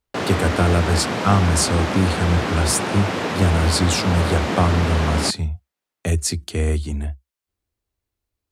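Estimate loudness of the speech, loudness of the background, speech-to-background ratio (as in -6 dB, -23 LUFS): -21.0 LUFS, -24.0 LUFS, 3.0 dB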